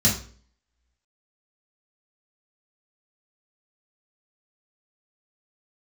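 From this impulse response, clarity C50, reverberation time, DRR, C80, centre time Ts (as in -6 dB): 7.5 dB, 0.45 s, -5.5 dB, 12.5 dB, 28 ms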